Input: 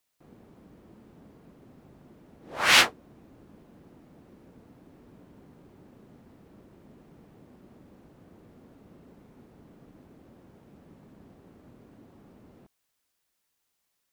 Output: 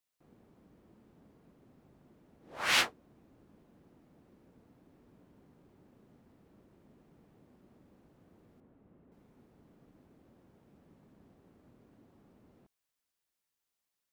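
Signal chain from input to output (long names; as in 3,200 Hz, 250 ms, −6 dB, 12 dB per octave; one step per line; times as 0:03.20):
0:08.60–0:09.12: high-frequency loss of the air 440 metres
level −9 dB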